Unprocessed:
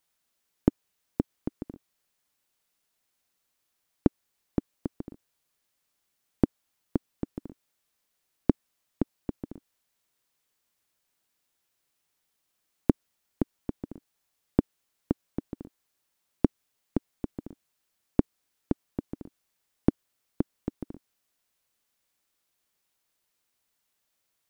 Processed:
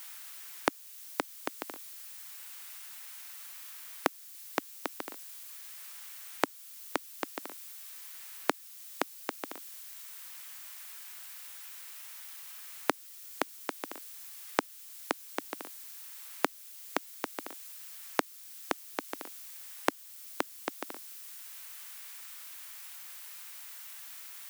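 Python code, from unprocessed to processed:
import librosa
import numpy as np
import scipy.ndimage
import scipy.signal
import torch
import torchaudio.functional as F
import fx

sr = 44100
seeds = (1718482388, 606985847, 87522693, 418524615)

y = scipy.signal.sosfilt(scipy.signal.butter(2, 910.0, 'highpass', fs=sr, output='sos'), x)
y = fx.tilt_eq(y, sr, slope=3.5)
y = fx.band_squash(y, sr, depth_pct=40)
y = F.gain(torch.from_numpy(y), 17.5).numpy()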